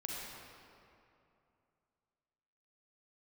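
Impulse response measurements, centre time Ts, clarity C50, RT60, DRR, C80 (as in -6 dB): 150 ms, -2.5 dB, 2.7 s, -3.5 dB, -1.0 dB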